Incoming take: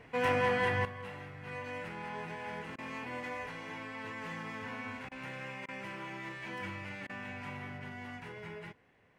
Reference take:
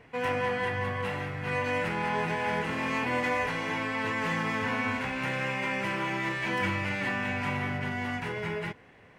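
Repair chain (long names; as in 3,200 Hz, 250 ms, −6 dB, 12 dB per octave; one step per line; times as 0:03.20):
repair the gap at 0:02.76/0:05.09/0:05.66/0:07.07, 23 ms
level correction +12 dB, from 0:00.85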